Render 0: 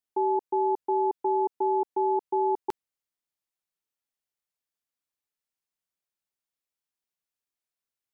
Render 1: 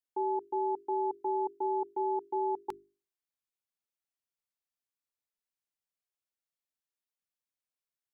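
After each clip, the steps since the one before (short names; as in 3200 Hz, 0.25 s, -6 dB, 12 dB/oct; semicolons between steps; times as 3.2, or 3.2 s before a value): notches 50/100/150/200/250/300/350/400 Hz; gain -6 dB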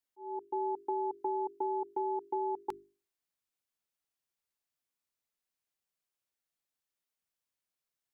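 auto swell 0.534 s; compressor, threshold -33 dBFS, peak gain reduction 5.5 dB; gain +2.5 dB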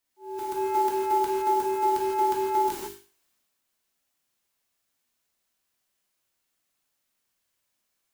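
spectral whitening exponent 0.3; transient shaper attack -11 dB, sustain +5 dB; non-linear reverb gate 0.19 s flat, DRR -4.5 dB; gain +6.5 dB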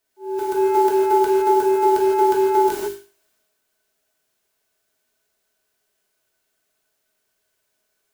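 small resonant body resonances 420/630/1500 Hz, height 15 dB, ringing for 90 ms; gain +4.5 dB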